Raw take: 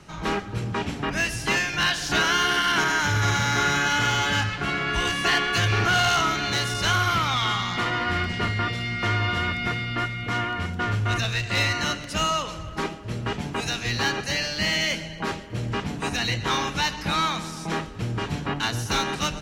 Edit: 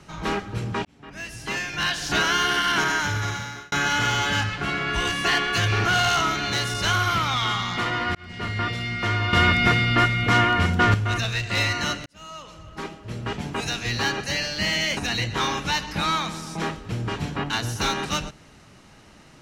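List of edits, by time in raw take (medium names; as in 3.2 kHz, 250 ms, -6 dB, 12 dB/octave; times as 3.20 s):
0.85–2.12 s: fade in
2.91–3.72 s: fade out
8.15–8.63 s: fade in
9.33–10.94 s: gain +8 dB
12.06–13.48 s: fade in
14.97–16.07 s: delete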